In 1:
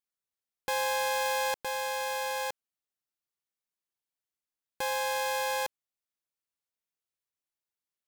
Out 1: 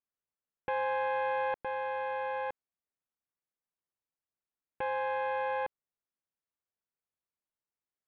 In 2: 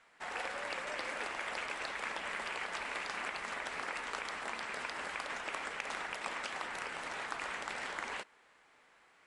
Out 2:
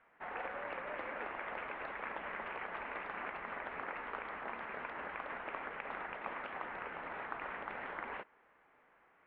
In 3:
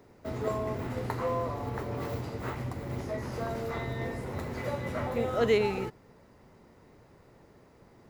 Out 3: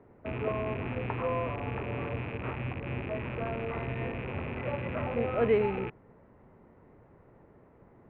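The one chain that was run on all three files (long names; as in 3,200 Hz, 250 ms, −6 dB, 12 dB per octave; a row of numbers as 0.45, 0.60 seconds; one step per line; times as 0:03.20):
loose part that buzzes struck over −42 dBFS, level −24 dBFS
Bessel low-pass filter 1,600 Hz, order 8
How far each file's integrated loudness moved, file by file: −2.5, −3.5, 0.0 LU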